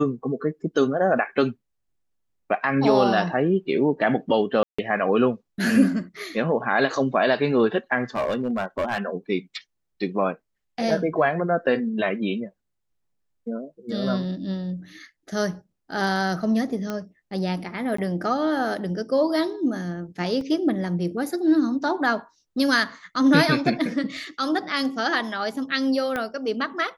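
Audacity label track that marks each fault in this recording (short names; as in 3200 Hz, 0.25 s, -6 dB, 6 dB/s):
4.630000	4.790000	gap 0.155 s
8.150000	8.980000	clipped -20 dBFS
16.900000	16.900000	pop -16 dBFS
17.970000	17.980000	gap 14 ms
20.410000	20.410000	gap 2 ms
26.160000	26.160000	pop -14 dBFS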